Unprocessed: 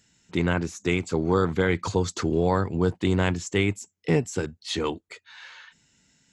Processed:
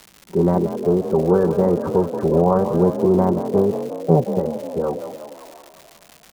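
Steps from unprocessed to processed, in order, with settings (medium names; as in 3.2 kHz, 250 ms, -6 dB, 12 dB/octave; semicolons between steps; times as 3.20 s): comb 5.2 ms, depth 64%; on a send: frequency-shifting echo 179 ms, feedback 63%, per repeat +36 Hz, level -10 dB; on the sum: formant shift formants +4 st; inverse Chebyshev low-pass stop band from 2.6 kHz, stop band 50 dB; crackle 270 per s -36 dBFS; trim +5.5 dB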